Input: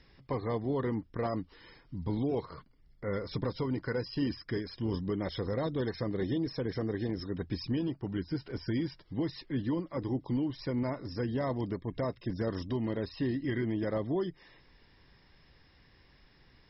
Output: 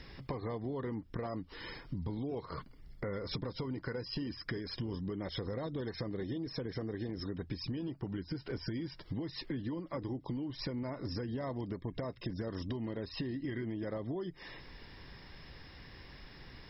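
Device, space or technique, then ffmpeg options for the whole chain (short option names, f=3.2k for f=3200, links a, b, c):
serial compression, peaks first: -af "acompressor=threshold=-40dB:ratio=6,acompressor=threshold=-47dB:ratio=2.5,volume=9.5dB"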